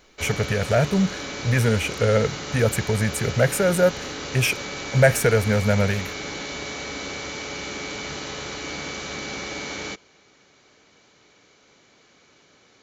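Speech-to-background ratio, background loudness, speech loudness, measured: 9.0 dB, -31.0 LUFS, -22.0 LUFS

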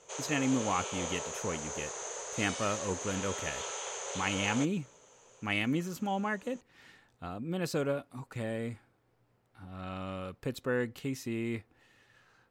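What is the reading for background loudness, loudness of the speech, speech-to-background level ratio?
-38.0 LUFS, -35.0 LUFS, 3.0 dB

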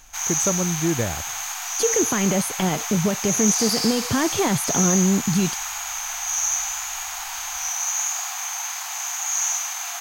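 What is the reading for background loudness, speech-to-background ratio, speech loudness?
-24.0 LUFS, 0.5 dB, -23.5 LUFS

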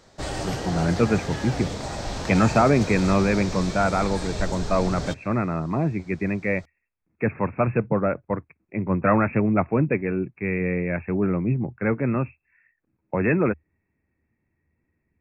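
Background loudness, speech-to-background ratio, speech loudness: -31.5 LUFS, 7.5 dB, -24.0 LUFS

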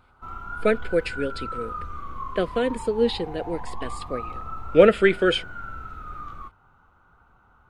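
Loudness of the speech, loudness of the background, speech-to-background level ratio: -23.0 LUFS, -37.0 LUFS, 14.0 dB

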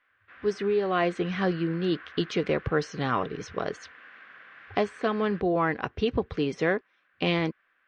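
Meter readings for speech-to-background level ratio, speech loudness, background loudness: 19.0 dB, -28.5 LUFS, -47.5 LUFS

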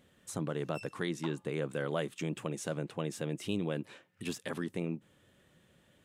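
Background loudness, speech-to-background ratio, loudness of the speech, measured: -52.0 LUFS, 14.5 dB, -37.5 LUFS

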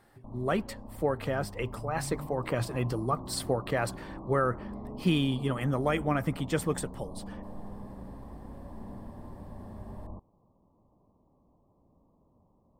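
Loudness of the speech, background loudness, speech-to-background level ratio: -31.5 LUFS, -44.0 LUFS, 12.5 dB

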